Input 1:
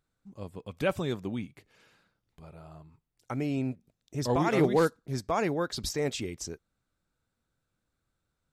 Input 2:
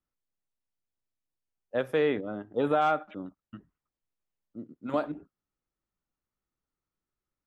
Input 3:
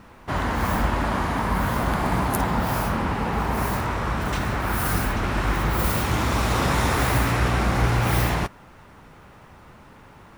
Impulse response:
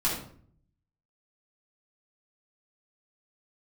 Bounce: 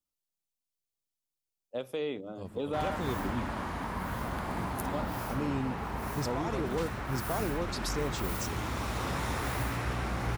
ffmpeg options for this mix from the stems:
-filter_complex "[0:a]adelay=2000,volume=-1.5dB[a];[1:a]highshelf=f=2.1k:g=10,volume=-5.5dB[b];[2:a]adelay=2450,volume=-11.5dB[c];[a][b]amix=inputs=2:normalize=0,equalizer=f=1.7k:w=2.4:g=-14.5,alimiter=level_in=0.5dB:limit=-24dB:level=0:latency=1:release=233,volume=-0.5dB,volume=0dB[d];[c][d]amix=inputs=2:normalize=0,bandreject=f=52.29:t=h:w=4,bandreject=f=104.58:t=h:w=4,bandreject=f=156.87:t=h:w=4,bandreject=f=209.16:t=h:w=4"

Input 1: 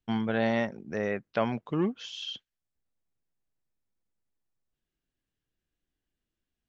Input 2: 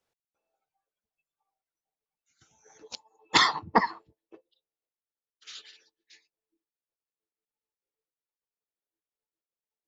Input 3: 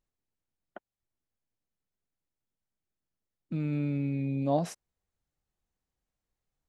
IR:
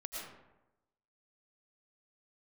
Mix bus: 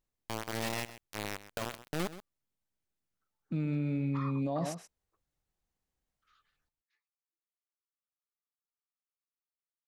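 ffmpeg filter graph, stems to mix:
-filter_complex "[0:a]acrusher=bits=3:mix=0:aa=0.000001,adelay=200,volume=-4dB,asplit=2[a][b];[b]volume=-18.5dB[c];[1:a]dynaudnorm=f=950:g=5:m=16dB,bandpass=f=1.2k:t=q:w=8.6:csg=0,adelay=800,volume=-13dB[d];[2:a]volume=-0.5dB,asplit=2[e][f];[f]volume=-11.5dB[g];[c][g]amix=inputs=2:normalize=0,aecho=0:1:129:1[h];[a][d][e][h]amix=inputs=4:normalize=0,alimiter=level_in=1dB:limit=-24dB:level=0:latency=1:release=41,volume=-1dB"

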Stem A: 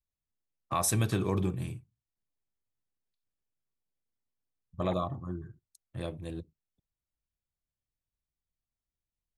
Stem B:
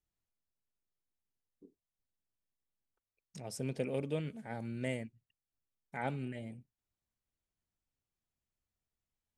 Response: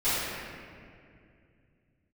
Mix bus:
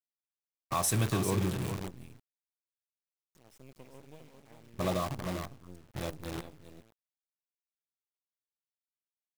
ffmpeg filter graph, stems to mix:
-filter_complex "[0:a]volume=-1dB,asplit=2[a][b];[b]volume=-9.5dB[c];[1:a]volume=-14.5dB,asplit=2[d][e];[e]volume=-5.5dB[f];[c][f]amix=inputs=2:normalize=0,aecho=0:1:398:1[g];[a][d][g]amix=inputs=3:normalize=0,acrusher=bits=7:dc=4:mix=0:aa=0.000001"

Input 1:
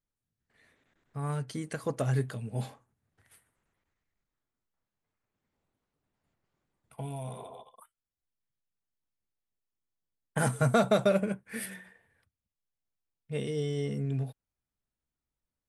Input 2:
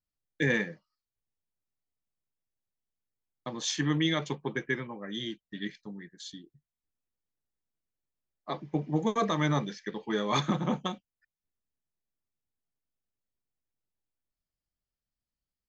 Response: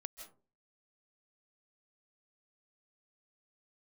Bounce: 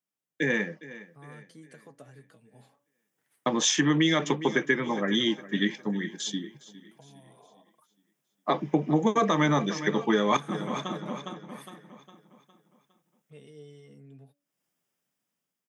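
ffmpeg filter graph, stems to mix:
-filter_complex "[0:a]bandreject=f=285.9:t=h:w=4,bandreject=f=571.8:t=h:w=4,acompressor=threshold=-40dB:ratio=2,flanger=delay=6.1:depth=1.2:regen=45:speed=1.3:shape=triangular,volume=-7dB,asplit=2[a][b];[1:a]equalizer=f=4.3k:w=6.3:g=-14,dynaudnorm=f=460:g=5:m=12.5dB,volume=1.5dB,asplit=2[c][d];[d]volume=-19dB[e];[b]apad=whole_len=691827[f];[c][f]sidechaincompress=threshold=-58dB:ratio=8:attack=7.9:release=363[g];[e]aecho=0:1:409|818|1227|1636|2045|2454:1|0.43|0.185|0.0795|0.0342|0.0147[h];[a][g][h]amix=inputs=3:normalize=0,highpass=f=160:w=0.5412,highpass=f=160:w=1.3066,acompressor=threshold=-21dB:ratio=4"

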